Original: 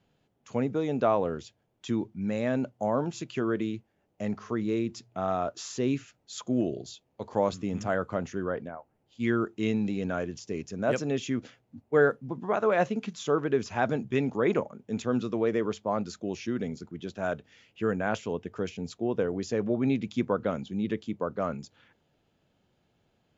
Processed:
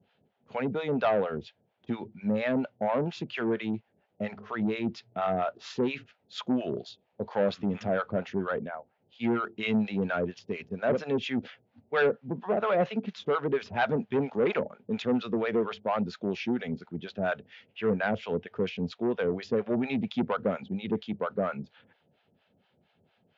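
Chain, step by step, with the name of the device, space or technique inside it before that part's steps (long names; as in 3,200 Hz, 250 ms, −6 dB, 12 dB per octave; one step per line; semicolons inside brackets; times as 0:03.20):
guitar amplifier with harmonic tremolo (two-band tremolo in antiphase 4.3 Hz, depth 100%, crossover 650 Hz; soft clipping −26.5 dBFS, distortion −13 dB; loudspeaker in its box 110–3,900 Hz, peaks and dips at 130 Hz −6 dB, 310 Hz −8 dB, 1,100 Hz −5 dB)
level +9 dB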